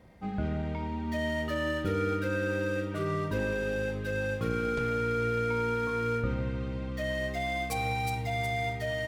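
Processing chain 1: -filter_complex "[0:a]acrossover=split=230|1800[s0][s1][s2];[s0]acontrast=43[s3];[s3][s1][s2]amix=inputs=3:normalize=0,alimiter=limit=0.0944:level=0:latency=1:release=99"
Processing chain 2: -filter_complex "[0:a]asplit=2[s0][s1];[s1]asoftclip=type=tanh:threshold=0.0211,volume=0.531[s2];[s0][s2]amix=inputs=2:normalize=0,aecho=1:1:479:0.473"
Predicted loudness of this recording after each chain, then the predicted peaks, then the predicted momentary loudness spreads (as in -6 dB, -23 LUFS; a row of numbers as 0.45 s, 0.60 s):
-30.5 LUFS, -29.0 LUFS; -20.5 dBFS, -16.5 dBFS; 2 LU, 4 LU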